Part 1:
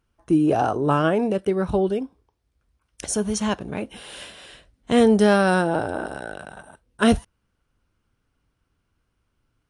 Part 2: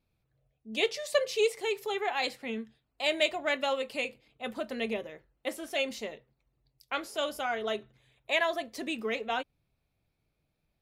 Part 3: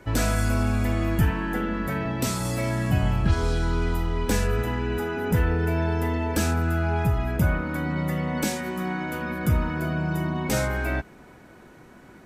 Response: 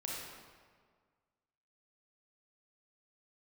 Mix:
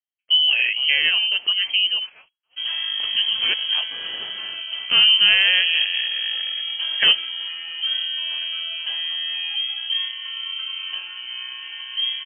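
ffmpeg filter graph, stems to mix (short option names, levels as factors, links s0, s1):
-filter_complex "[0:a]highpass=110,volume=1.12[s0];[1:a]acrossover=split=490|1800[s1][s2][s3];[s1]acompressor=threshold=0.0112:ratio=4[s4];[s2]acompressor=threshold=0.0141:ratio=4[s5];[s3]acompressor=threshold=0.00631:ratio=4[s6];[s4][s5][s6]amix=inputs=3:normalize=0,aeval=exprs='val(0)*sgn(sin(2*PI*100*n/s))':c=same,volume=0.251[s7];[2:a]lowpass=f=1100:p=1,adelay=2500,volume=0.708[s8];[s0][s7][s8]amix=inputs=3:normalize=0,agate=range=0.0447:threshold=0.00562:ratio=16:detection=peak,lowpass=f=2800:t=q:w=0.5098,lowpass=f=2800:t=q:w=0.6013,lowpass=f=2800:t=q:w=0.9,lowpass=f=2800:t=q:w=2.563,afreqshift=-3300"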